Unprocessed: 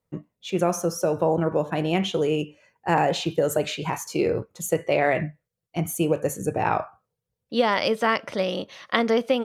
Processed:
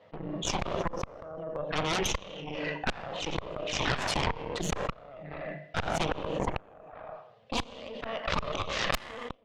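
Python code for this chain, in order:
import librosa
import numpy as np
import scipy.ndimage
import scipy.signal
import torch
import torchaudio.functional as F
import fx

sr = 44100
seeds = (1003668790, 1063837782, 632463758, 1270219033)

y = fx.cabinet(x, sr, low_hz=220.0, low_slope=12, high_hz=2700.0, hz=(230.0, 360.0, 640.0, 910.0, 1400.0, 2300.0), db=(-5, -8, 7, -5, -8, -9))
y = fx.echo_feedback(y, sr, ms=80, feedback_pct=48, wet_db=-19.5)
y = fx.env_flanger(y, sr, rest_ms=9.7, full_db=-19.0)
y = fx.hum_notches(y, sr, base_hz=60, count=8)
y = fx.gate_flip(y, sr, shuts_db=-20.0, range_db=-35)
y = fx.over_compress(y, sr, threshold_db=-30.0, ratio=-1.0)
y = fx.high_shelf(y, sr, hz=2100.0, db=11.0)
y = fx.rev_schroeder(y, sr, rt60_s=0.7, comb_ms=27, drr_db=12.0)
y = fx.cheby_harmonics(y, sr, harmonics=(3, 8), levels_db=(-13, -9), full_scale_db=-14.0)
y = fx.pre_swell(y, sr, db_per_s=29.0)
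y = y * librosa.db_to_amplitude(-1.0)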